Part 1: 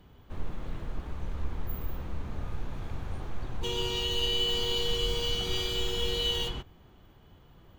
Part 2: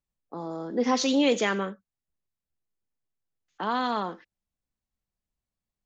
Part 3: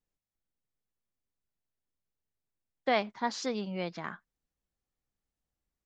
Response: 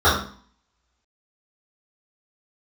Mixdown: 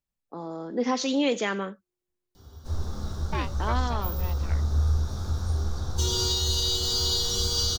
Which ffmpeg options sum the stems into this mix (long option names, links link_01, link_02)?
-filter_complex "[0:a]highshelf=frequency=3600:width_type=q:width=3:gain=13,adelay=2350,volume=-2.5dB,asplit=2[link_01][link_02];[link_02]volume=-19dB[link_03];[1:a]volume=-1dB[link_04];[2:a]aeval=exprs='val(0)*sin(2*PI*360*n/s)':channel_layout=same,adelay=450,volume=-1dB[link_05];[3:a]atrim=start_sample=2205[link_06];[link_03][link_06]afir=irnorm=-1:irlink=0[link_07];[link_01][link_04][link_05][link_07]amix=inputs=4:normalize=0,alimiter=limit=-15dB:level=0:latency=1:release=496"